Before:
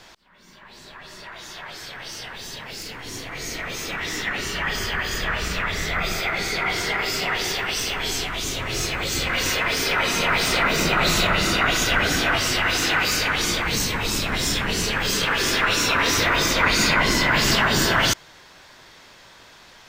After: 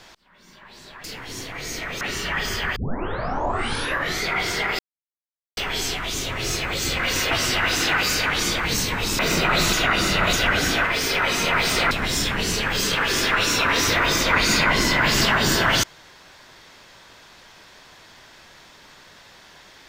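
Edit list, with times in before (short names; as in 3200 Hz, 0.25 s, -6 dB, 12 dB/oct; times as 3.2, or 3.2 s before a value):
1.04–2.81 cut
3.78–4.31 cut
5.06 tape start 1.49 s
7.09–7.87 mute
9.61–10.67 swap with 12.33–14.21
11.21–11.81 reverse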